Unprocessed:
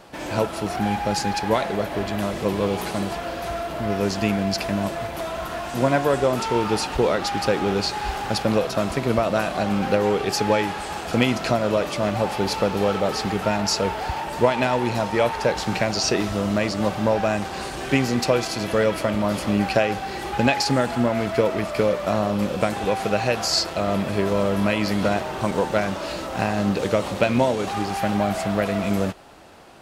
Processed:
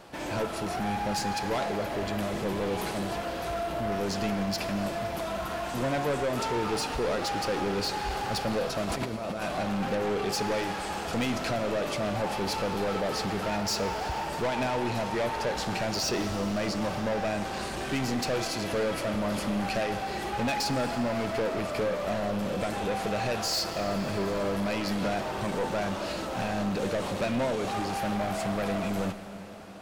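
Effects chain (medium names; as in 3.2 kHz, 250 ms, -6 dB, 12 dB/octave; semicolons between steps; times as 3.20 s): 8.85–9.42 s: compressor with a negative ratio -29 dBFS, ratio -1; saturation -22 dBFS, distortion -8 dB; plate-style reverb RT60 4.8 s, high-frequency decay 0.9×, DRR 10 dB; trim -3 dB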